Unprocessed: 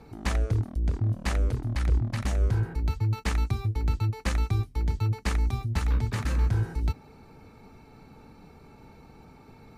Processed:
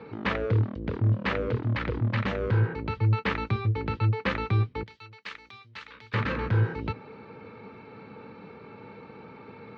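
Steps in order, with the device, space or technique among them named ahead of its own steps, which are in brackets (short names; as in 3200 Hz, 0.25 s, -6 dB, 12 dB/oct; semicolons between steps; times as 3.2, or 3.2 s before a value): 4.83–6.14 pre-emphasis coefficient 0.97; overdrive pedal into a guitar cabinet (overdrive pedal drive 16 dB, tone 2800 Hz, clips at -14.5 dBFS; speaker cabinet 100–3700 Hz, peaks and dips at 110 Hz +9 dB, 200 Hz +6 dB, 480 Hz +7 dB, 730 Hz -9 dB)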